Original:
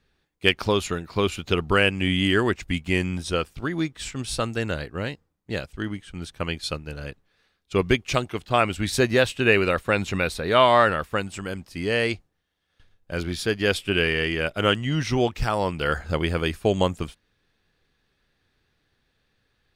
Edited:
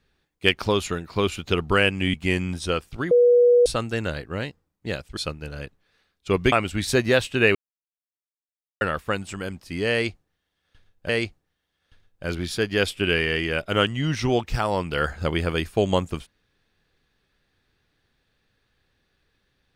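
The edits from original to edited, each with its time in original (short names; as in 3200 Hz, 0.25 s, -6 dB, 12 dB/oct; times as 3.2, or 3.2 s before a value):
2.14–2.78 cut
3.75–4.3 bleep 485 Hz -12 dBFS
5.81–6.62 cut
7.97–8.57 cut
9.6–10.86 mute
11.97–13.14 loop, 2 plays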